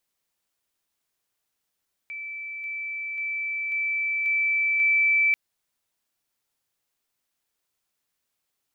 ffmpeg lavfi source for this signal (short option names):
-f lavfi -i "aevalsrc='pow(10,(-32.5+3*floor(t/0.54))/20)*sin(2*PI*2320*t)':d=3.24:s=44100"